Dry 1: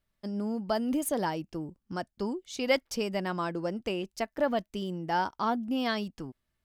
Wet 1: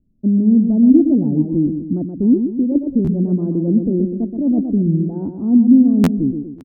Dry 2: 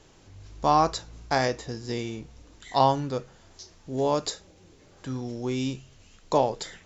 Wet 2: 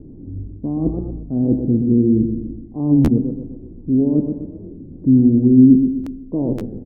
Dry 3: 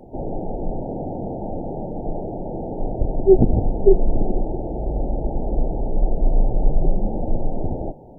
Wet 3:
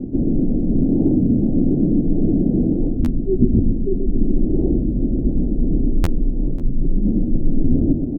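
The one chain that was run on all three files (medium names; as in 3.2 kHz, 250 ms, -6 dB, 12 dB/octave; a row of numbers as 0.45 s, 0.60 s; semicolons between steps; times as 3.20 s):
reverse; compression 6:1, threshold -31 dBFS; reverse; four-pole ladder low-pass 310 Hz, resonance 55%; on a send: feedback delay 125 ms, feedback 46%, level -7 dB; on the sum: buffer glitch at 3.05/6.03/6.59 s, times 2; warped record 33 1/3 rpm, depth 160 cents; peak normalisation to -1.5 dBFS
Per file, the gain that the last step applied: +27.0 dB, +27.0 dB, +25.5 dB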